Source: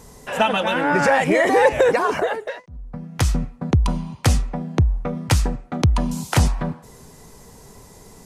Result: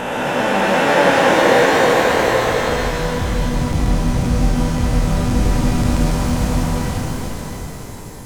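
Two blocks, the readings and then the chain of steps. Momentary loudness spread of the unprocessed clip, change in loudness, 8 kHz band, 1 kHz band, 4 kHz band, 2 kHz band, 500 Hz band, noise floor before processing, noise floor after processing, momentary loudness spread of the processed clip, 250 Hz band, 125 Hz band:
14 LU, +3.5 dB, +3.5 dB, +4.5 dB, +6.0 dB, +5.0 dB, +4.0 dB, -46 dBFS, -30 dBFS, 13 LU, +6.0 dB, +2.5 dB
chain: spectral blur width 1480 ms; pitch-shifted reverb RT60 2.3 s, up +12 st, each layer -8 dB, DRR -1 dB; trim +6.5 dB

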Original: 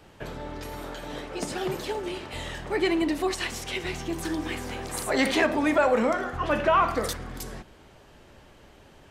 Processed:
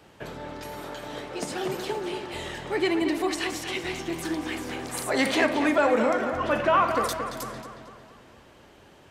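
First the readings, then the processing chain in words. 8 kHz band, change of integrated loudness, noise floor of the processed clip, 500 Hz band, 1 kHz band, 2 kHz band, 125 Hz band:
0.0 dB, +0.5 dB, -53 dBFS, +0.5 dB, +1.0 dB, +0.5 dB, -2.5 dB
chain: high-pass 110 Hz 6 dB/octave; on a send: filtered feedback delay 226 ms, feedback 53%, low-pass 4.8 kHz, level -8 dB

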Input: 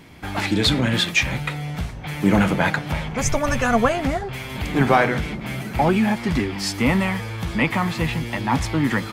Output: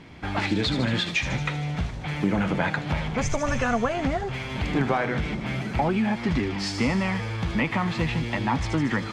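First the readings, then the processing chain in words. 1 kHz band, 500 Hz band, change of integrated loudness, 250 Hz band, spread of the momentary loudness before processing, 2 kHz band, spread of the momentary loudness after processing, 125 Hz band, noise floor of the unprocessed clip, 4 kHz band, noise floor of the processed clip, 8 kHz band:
-5.0 dB, -5.0 dB, -4.5 dB, -4.0 dB, 10 LU, -5.0 dB, 5 LU, -3.0 dB, -33 dBFS, -6.0 dB, -34 dBFS, -8.0 dB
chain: treble shelf 8.1 kHz +7.5 dB; compression 5:1, threshold -20 dBFS, peak gain reduction 9 dB; distance through air 130 m; feedback echo behind a high-pass 77 ms, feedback 71%, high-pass 5.2 kHz, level -4 dB

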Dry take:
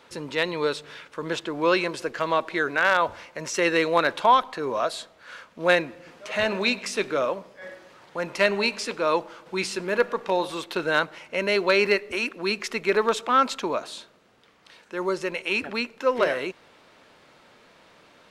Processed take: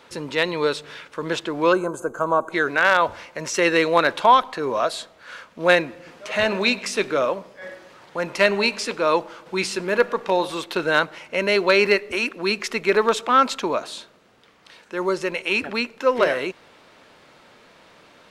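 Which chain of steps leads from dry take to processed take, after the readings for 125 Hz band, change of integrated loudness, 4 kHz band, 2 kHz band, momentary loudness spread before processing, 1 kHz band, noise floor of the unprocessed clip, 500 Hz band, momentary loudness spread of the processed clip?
+3.5 dB, +3.5 dB, +3.5 dB, +3.5 dB, 15 LU, +3.5 dB, -56 dBFS, +3.5 dB, 15 LU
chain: time-frequency box 1.72–2.52 s, 1.6–6.1 kHz -22 dB; trim +3.5 dB

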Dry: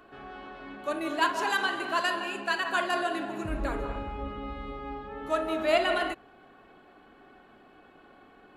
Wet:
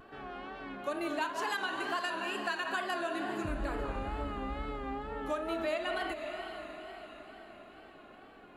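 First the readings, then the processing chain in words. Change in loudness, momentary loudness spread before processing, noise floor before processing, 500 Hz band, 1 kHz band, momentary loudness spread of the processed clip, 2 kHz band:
-6.5 dB, 13 LU, -56 dBFS, -5.5 dB, -5.5 dB, 17 LU, -6.0 dB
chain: on a send: echo that smears into a reverb 516 ms, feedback 51%, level -15.5 dB; on the sum: compression 6:1, threshold -31 dBFS, peak gain reduction 12 dB; vibrato 2.2 Hz 71 cents

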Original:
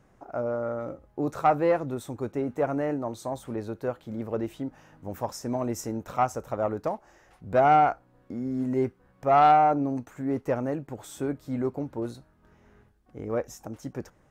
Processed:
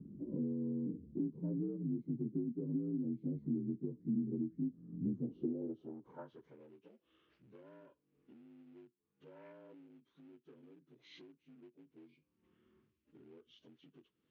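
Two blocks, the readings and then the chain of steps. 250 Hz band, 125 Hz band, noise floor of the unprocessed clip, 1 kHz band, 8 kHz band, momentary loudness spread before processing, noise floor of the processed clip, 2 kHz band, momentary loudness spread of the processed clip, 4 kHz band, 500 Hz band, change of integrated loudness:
-8.0 dB, -10.0 dB, -62 dBFS, under -40 dB, under -35 dB, 18 LU, -84 dBFS, under -30 dB, 21 LU, under -15 dB, -22.0 dB, -12.5 dB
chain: frequency axis rescaled in octaves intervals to 80%; FFT filter 360 Hz 0 dB, 690 Hz -27 dB, 1.6 kHz -20 dB, 4.1 kHz -27 dB; compression 6:1, threshold -50 dBFS, peak gain reduction 25 dB; treble shelf 4.6 kHz +7 dB; in parallel at -11.5 dB: one-sided clip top -51.5 dBFS; on the sum: band-pass sweep 210 Hz -> 2.7 kHz, 5.17–6.66 s; trim +16.5 dB

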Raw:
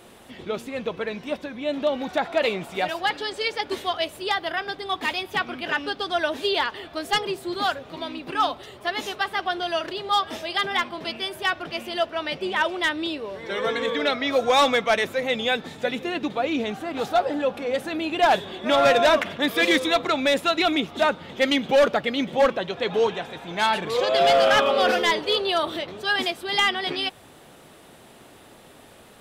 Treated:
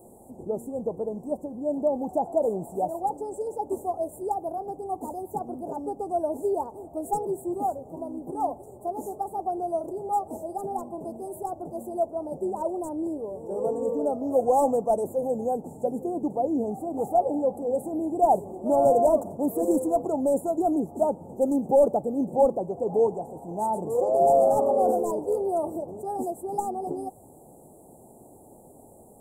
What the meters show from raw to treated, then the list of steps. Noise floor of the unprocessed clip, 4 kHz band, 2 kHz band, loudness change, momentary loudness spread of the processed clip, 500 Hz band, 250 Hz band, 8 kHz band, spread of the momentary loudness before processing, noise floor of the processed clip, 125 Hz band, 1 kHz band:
-49 dBFS, under -40 dB, under -40 dB, -3.5 dB, 12 LU, -0.5 dB, 0.0 dB, -5.0 dB, 10 LU, -51 dBFS, -0.5 dB, -2.5 dB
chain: Chebyshev band-stop 840–7700 Hz, order 4

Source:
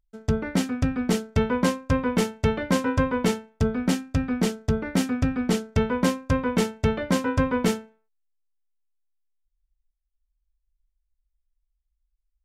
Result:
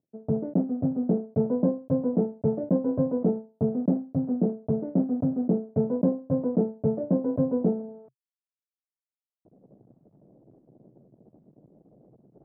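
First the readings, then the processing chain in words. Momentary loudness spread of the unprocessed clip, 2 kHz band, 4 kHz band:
4 LU, under -30 dB, under -40 dB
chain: block-companded coder 3-bit; Chebyshev band-pass 130–660 Hz, order 3; reverse; upward compressor, threshold -28 dBFS; reverse

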